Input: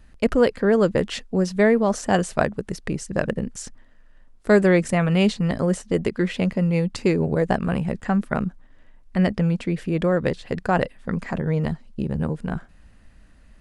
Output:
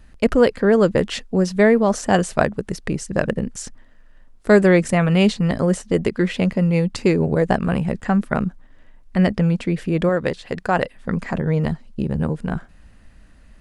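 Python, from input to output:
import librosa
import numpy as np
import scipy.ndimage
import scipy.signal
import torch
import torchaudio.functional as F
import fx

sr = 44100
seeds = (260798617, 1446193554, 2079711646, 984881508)

y = fx.low_shelf(x, sr, hz=330.0, db=-6.0, at=(10.09, 10.94))
y = y * 10.0 ** (3.0 / 20.0)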